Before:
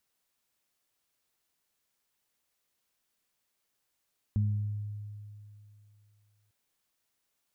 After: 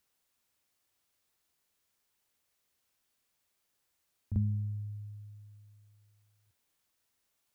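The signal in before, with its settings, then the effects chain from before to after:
harmonic partials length 2.15 s, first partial 104 Hz, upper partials −8 dB, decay 2.71 s, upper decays 0.83 s, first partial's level −23.5 dB
parametric band 82 Hz +8 dB 0.35 octaves
on a send: backwards echo 43 ms −8.5 dB

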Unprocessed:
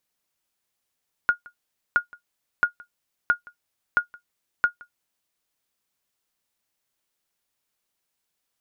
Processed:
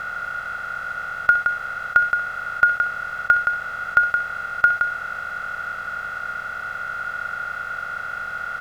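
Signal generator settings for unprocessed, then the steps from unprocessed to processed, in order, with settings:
ping with an echo 1,430 Hz, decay 0.11 s, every 0.67 s, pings 6, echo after 0.17 s, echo −25 dB −9.5 dBFS
compressor on every frequency bin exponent 0.2
comb filter 1.5 ms, depth 96%
flutter between parallel walls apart 11 metres, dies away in 0.34 s

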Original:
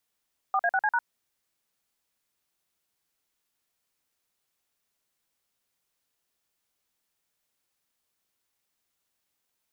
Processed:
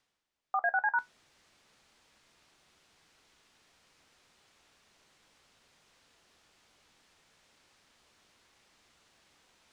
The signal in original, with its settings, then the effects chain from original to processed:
touch tones "4A6C#", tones 53 ms, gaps 46 ms, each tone −24 dBFS
reversed playback
upward compression, threshold −39 dBFS
reversed playback
high-frequency loss of the air 92 metres
tuned comb filter 74 Hz, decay 0.15 s, harmonics all, mix 50%

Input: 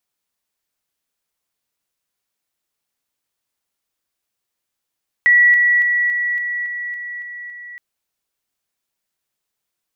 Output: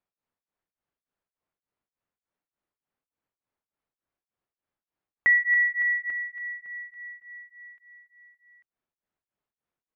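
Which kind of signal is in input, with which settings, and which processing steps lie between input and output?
level staircase 1,940 Hz −8 dBFS, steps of −3 dB, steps 9, 0.28 s 0.00 s
Bessel low-pass filter 1,300 Hz, order 2
single-tap delay 843 ms −15 dB
tremolo along a rectified sine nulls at 3.4 Hz

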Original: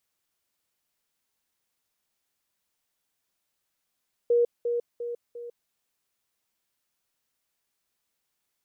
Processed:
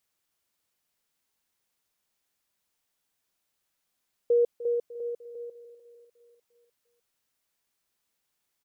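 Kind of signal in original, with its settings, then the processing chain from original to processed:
level staircase 476 Hz −18 dBFS, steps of −6 dB, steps 4, 0.15 s 0.20 s
repeating echo 300 ms, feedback 56%, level −15.5 dB

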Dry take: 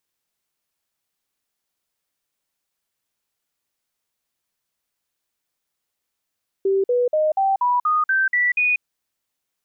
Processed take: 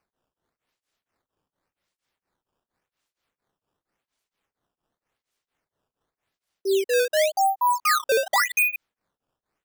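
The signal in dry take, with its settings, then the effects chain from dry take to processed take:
stepped sweep 389 Hz up, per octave 3, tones 9, 0.19 s, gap 0.05 s −15.5 dBFS
high-pass filter 310 Hz 24 dB per octave
sample-and-hold swept by an LFO 12×, swing 160% 0.89 Hz
tremolo along a rectified sine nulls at 4.3 Hz

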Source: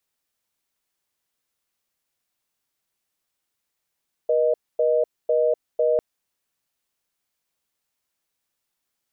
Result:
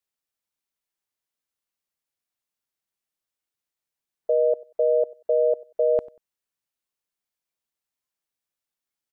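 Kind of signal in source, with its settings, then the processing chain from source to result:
call progress tone reorder tone, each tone −19.5 dBFS 1.70 s
noise reduction from a noise print of the clip's start 9 dB
repeating echo 94 ms, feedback 23%, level −22 dB

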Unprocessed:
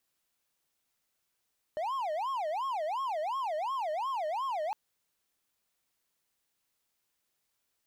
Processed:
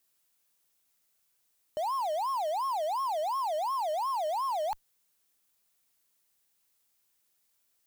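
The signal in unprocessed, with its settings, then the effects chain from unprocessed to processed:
siren wail 606–1,090 Hz 2.8 per second triangle −28.5 dBFS 2.96 s
high-shelf EQ 6,000 Hz +8.5 dB
in parallel at −5 dB: comparator with hysteresis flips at −49 dBFS

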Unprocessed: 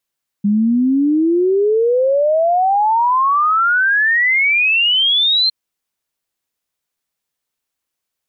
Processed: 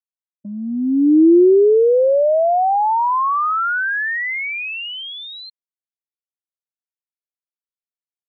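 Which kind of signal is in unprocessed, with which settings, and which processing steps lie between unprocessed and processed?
exponential sine sweep 200 Hz → 4,200 Hz 5.06 s −11 dBFS
low-pass filter 1,800 Hz 6 dB per octave
downward expander −13 dBFS
low shelf with overshoot 250 Hz −8.5 dB, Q 3

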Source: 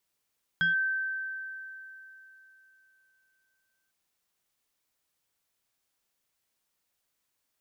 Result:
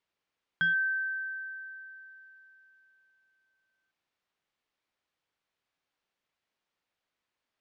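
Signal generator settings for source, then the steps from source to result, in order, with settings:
two-operator FM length 3.30 s, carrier 1,550 Hz, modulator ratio 1.11, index 0.52, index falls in 0.14 s linear, decay 3.39 s, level −21.5 dB
low-pass filter 3,400 Hz 12 dB per octave
low-shelf EQ 150 Hz −5.5 dB

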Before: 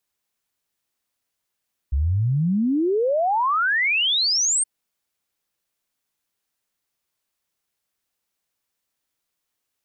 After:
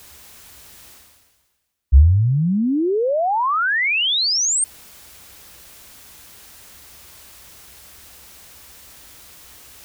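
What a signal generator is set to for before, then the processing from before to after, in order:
exponential sine sweep 64 Hz → 8,900 Hz 2.72 s −17.5 dBFS
parametric band 63 Hz +14.5 dB 1 octave
reversed playback
upward compression, threshold −16 dBFS
reversed playback

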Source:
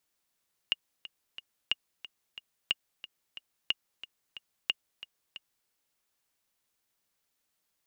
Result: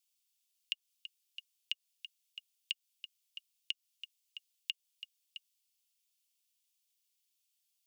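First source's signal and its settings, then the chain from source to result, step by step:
click track 181 BPM, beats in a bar 3, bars 5, 2,850 Hz, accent 16 dB −13 dBFS
Butterworth high-pass 2,600 Hz 36 dB per octave
notch filter 4,000 Hz, Q 29
downward compressor, threshold −33 dBFS

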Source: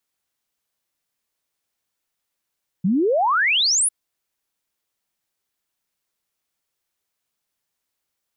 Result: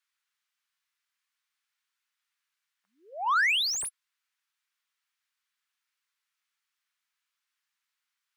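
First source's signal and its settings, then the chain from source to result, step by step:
exponential sine sweep 170 Hz → 11,000 Hz 1.05 s −15.5 dBFS
high-pass filter 1,200 Hz 24 dB per octave
flanger 0.49 Hz, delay 1.9 ms, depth 1.2 ms, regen −79%
mid-hump overdrive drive 14 dB, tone 2,000 Hz, clips at −17.5 dBFS

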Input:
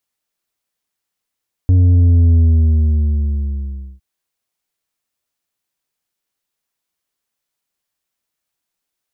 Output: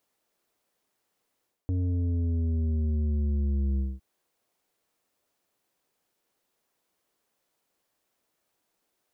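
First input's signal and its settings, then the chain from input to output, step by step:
bass drop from 92 Hz, over 2.31 s, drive 6 dB, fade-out 1.66 s, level −8 dB
parametric band 450 Hz +10.5 dB 2.8 octaves
reversed playback
downward compressor 6 to 1, threshold −19 dBFS
reversed playback
brickwall limiter −22.5 dBFS

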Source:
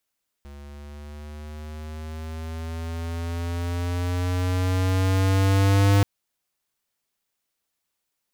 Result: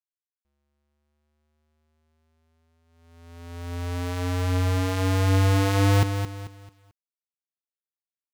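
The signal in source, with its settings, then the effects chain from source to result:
pitch glide with a swell square, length 5.58 s, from 70.9 Hz, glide +6 semitones, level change +25 dB, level −16.5 dB
noise gate −29 dBFS, range −33 dB
low-shelf EQ 68 Hz −5 dB
feedback echo at a low word length 220 ms, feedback 35%, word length 9 bits, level −8 dB

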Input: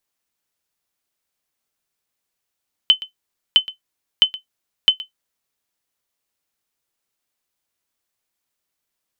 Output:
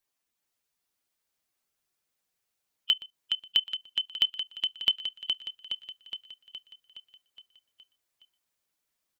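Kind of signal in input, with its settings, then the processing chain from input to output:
ping with an echo 3,050 Hz, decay 0.12 s, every 0.66 s, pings 4, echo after 0.12 s, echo −18.5 dB −2.5 dBFS
spectral magnitudes quantised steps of 15 dB
output level in coarse steps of 21 dB
on a send: repeating echo 417 ms, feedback 59%, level −5 dB

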